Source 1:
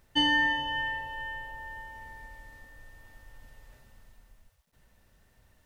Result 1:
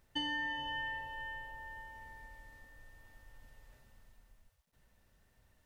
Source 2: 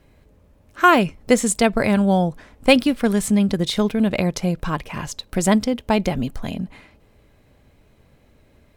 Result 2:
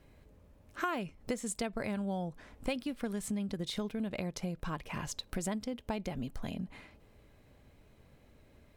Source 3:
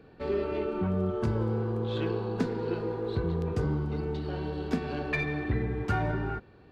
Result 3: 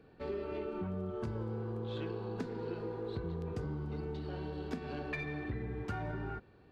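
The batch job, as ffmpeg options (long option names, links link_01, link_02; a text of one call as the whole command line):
ffmpeg -i in.wav -af "acompressor=threshold=-29dB:ratio=4,volume=-6dB" out.wav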